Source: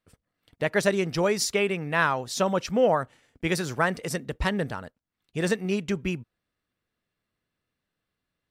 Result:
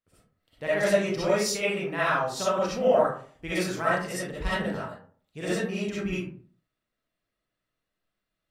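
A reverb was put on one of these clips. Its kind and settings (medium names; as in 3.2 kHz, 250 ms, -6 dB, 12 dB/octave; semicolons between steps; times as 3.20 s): algorithmic reverb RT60 0.48 s, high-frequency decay 0.5×, pre-delay 20 ms, DRR -9.5 dB; trim -10.5 dB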